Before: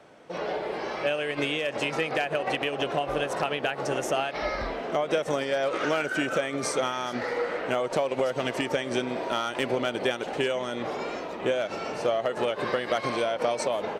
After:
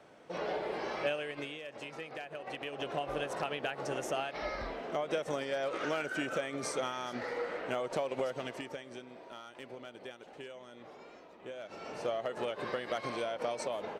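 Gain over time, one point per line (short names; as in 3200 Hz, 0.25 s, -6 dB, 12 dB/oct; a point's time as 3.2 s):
1.03 s -5 dB
1.58 s -16 dB
2.34 s -16 dB
2.99 s -8 dB
8.24 s -8 dB
9.03 s -20 dB
11.44 s -20 dB
11.97 s -9 dB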